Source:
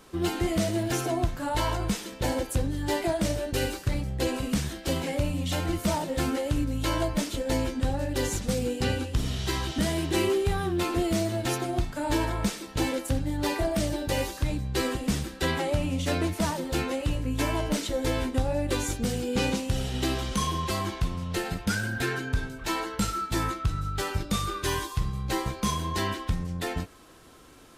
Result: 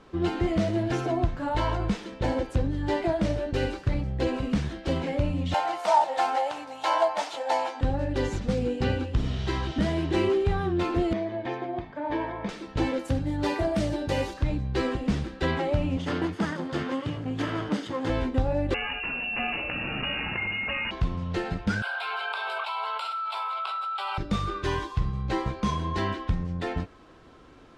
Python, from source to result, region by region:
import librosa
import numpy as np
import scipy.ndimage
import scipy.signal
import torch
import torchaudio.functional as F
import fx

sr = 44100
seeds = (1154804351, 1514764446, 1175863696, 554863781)

y = fx.chain(x, sr, fx.highpass_res(hz=790.0, q=6.0),
    fx.high_shelf(hz=4300.0, db=8.5), at=(5.54, 7.81))
y = fx.chain(y, sr, fx.lowpass(hz=2600.0, slope=12),
    fx.low_shelf(hz=270.0, db=-9.0),
    fx.notch_comb(f0_hz=1400.0), at=(11.13, 12.49))
y = fx.chain(y, sr, fx.highpass(hz=56.0, slope=12),
    fx.high_shelf(hz=7700.0, db=12.0), at=(12.99, 14.34))
y = fx.chain(y, sr, fx.lower_of_two(delay_ms=0.61),
    fx.highpass(hz=110.0, slope=24), at=(15.97, 18.1))
y = fx.chain(y, sr, fx.steep_highpass(hz=310.0, slope=96),
    fx.freq_invert(carrier_hz=3200),
    fx.env_flatten(amount_pct=70), at=(18.74, 20.91))
y = fx.chain(y, sr, fx.steep_highpass(hz=440.0, slope=96),
    fx.fixed_phaser(hz=1800.0, stages=6),
    fx.env_flatten(amount_pct=100), at=(21.82, 24.18))
y = scipy.signal.sosfilt(scipy.signal.butter(2, 5000.0, 'lowpass', fs=sr, output='sos'), y)
y = fx.high_shelf(y, sr, hz=2900.0, db=-8.5)
y = y * 10.0 ** (1.5 / 20.0)